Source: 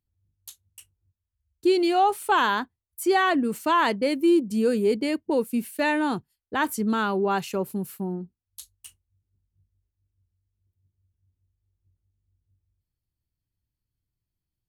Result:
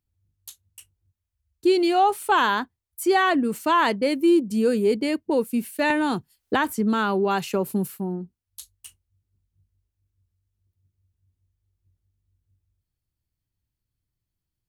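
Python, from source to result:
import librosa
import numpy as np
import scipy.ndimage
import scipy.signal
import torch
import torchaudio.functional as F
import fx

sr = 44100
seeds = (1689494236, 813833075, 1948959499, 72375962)

y = fx.band_squash(x, sr, depth_pct=100, at=(5.9, 7.88))
y = y * 10.0 ** (1.5 / 20.0)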